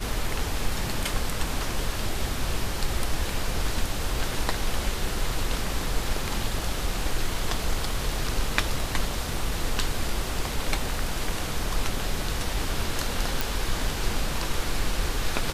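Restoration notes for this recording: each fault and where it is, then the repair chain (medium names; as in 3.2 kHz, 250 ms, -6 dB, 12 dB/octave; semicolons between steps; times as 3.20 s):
13.41 s: pop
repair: de-click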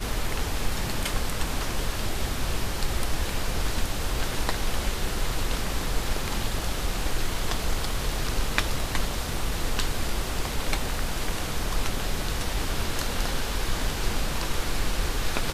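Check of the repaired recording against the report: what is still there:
nothing left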